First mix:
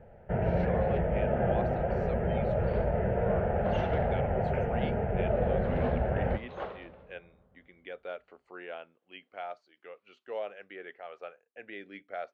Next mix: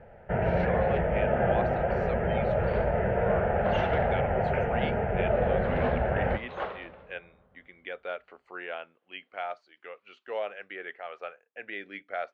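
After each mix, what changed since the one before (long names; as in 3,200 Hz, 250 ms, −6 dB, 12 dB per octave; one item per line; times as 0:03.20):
master: add parametric band 1,800 Hz +7.5 dB 2.9 octaves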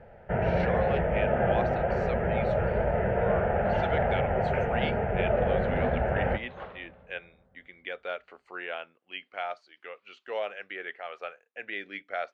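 speech: add high-shelf EQ 3,100 Hz +8 dB
second sound −8.5 dB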